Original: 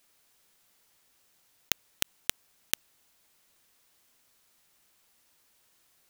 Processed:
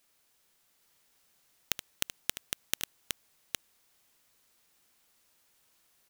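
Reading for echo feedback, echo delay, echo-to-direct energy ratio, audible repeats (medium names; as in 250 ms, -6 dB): no regular repeats, 75 ms, -3.0 dB, 2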